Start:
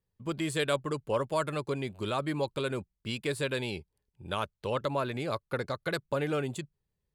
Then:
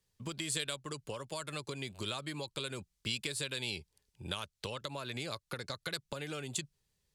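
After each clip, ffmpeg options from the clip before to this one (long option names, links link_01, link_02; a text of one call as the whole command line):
ffmpeg -i in.wav -filter_complex "[0:a]acompressor=threshold=-38dB:ratio=6,equalizer=frequency=6000:width=0.35:gain=13,acrossover=split=180|3000[link_01][link_02][link_03];[link_02]acompressor=threshold=-43dB:ratio=2[link_04];[link_01][link_04][link_03]amix=inputs=3:normalize=0,volume=1dB" out.wav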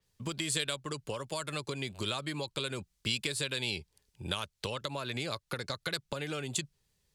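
ffmpeg -i in.wav -af "adynamicequalizer=threshold=0.00251:dfrequency=5900:dqfactor=0.7:tfrequency=5900:tqfactor=0.7:attack=5:release=100:ratio=0.375:range=2:mode=cutabove:tftype=highshelf,volume=4dB" out.wav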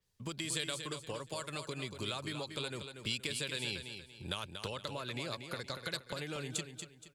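ffmpeg -i in.wav -af "aecho=1:1:236|472|708|944:0.398|0.131|0.0434|0.0143,volume=-4.5dB" out.wav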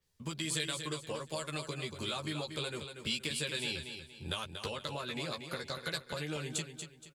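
ffmpeg -i in.wav -filter_complex "[0:a]asplit=2[link_01][link_02];[link_02]adelay=13,volume=-3dB[link_03];[link_01][link_03]amix=inputs=2:normalize=0" out.wav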